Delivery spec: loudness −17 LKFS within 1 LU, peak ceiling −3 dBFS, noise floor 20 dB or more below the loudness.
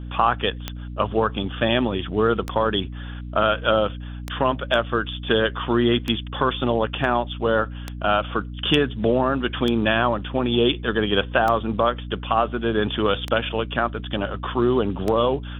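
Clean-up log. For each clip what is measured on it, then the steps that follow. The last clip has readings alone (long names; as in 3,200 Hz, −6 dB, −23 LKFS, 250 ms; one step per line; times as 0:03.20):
number of clicks 9; mains hum 60 Hz; hum harmonics up to 300 Hz; level of the hum −31 dBFS; integrated loudness −22.5 LKFS; sample peak −4.5 dBFS; target loudness −17.0 LKFS
→ click removal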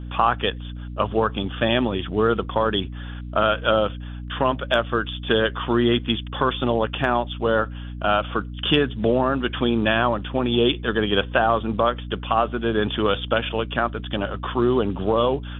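number of clicks 0; mains hum 60 Hz; hum harmonics up to 300 Hz; level of the hum −31 dBFS
→ hum removal 60 Hz, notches 5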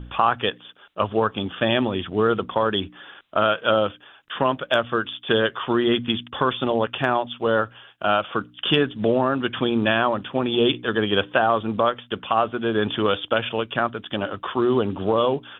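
mains hum none found; integrated loudness −22.5 LKFS; sample peak −3.5 dBFS; target loudness −17.0 LKFS
→ level +5.5 dB
brickwall limiter −3 dBFS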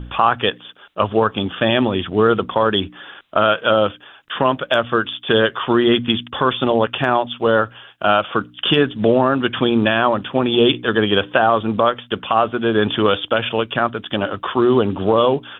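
integrated loudness −17.5 LKFS; sample peak −3.0 dBFS; background noise floor −46 dBFS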